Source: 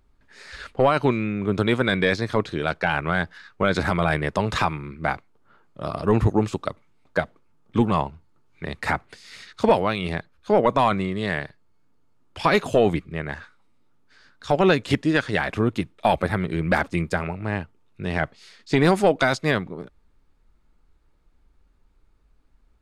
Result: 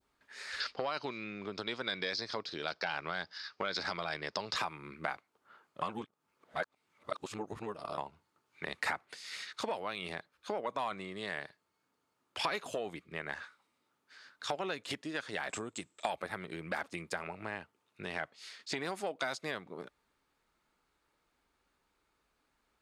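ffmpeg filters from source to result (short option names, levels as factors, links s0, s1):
-filter_complex "[0:a]asettb=1/sr,asplit=3[s0][s1][s2];[s0]atrim=end=0.604[s3];[s1]atrim=start=0.6:end=4.56,asetpts=PTS-STARTPTS,afade=t=in:d=0.004:c=qsin,afade=t=out:st=3.956:d=0.004:c=qsin,lowpass=f=5000:t=q:w=6.3[s4];[s2]atrim=start=4.556[s5];[s3][s4]acrossfade=d=0.004:c1=hsin:c2=qsin[s6];[s6][s5]acrossfade=d=0.004:c1=qsin:c2=hsin,asettb=1/sr,asplit=3[s7][s8][s9];[s7]atrim=end=15.494[s10];[s8]atrim=start=15.49:end=16.1,asetpts=PTS-STARTPTS,afade=t=in:d=0.004:c=qsin,afade=t=out:st=0.606:d=0.004:c=qsin,lowpass=f=7700:t=q:w=15[s11];[s9]atrim=start=16.096[s12];[s10][s11]acrossfade=d=0.004:c1=hsin:c2=qsin[s13];[s13][s12]acrossfade=d=0.004:c1=qsin:c2=hsin,asplit=3[s14][s15][s16];[s14]atrim=end=5.822[s17];[s15]atrim=start=5.818:end=7.982,asetpts=PTS-STARTPTS,areverse[s18];[s16]atrim=start=7.978[s19];[s17][s18]acrossfade=d=0.004:c1=hsin:c2=hsin[s20];[s20][s19]acrossfade=d=0.004:c1=hsin:c2=hsin,adynamicequalizer=threshold=0.0141:dfrequency=1900:dqfactor=0.73:tfrequency=1900:tqfactor=0.73:attack=5:release=100:ratio=0.375:range=2:mode=cutabove:tftype=bell,acompressor=threshold=0.0355:ratio=6,highpass=f=820:p=1"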